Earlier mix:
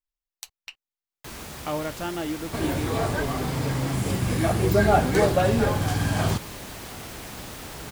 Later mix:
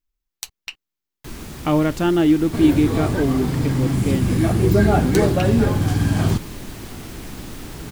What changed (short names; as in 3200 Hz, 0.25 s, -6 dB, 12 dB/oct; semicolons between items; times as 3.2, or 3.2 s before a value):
speech +8.5 dB; first sound: remove HPF 41 Hz; master: add resonant low shelf 430 Hz +6 dB, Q 1.5